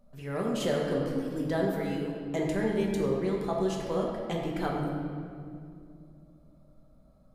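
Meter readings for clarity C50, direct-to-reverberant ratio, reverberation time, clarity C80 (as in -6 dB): 1.5 dB, -2.5 dB, 2.3 s, 2.5 dB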